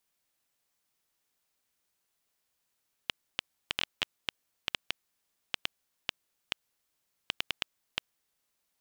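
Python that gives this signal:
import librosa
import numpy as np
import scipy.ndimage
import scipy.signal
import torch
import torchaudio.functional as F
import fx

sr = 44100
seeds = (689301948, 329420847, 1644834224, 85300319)

y = fx.geiger_clicks(sr, seeds[0], length_s=5.22, per_s=4.0, level_db=-10.0)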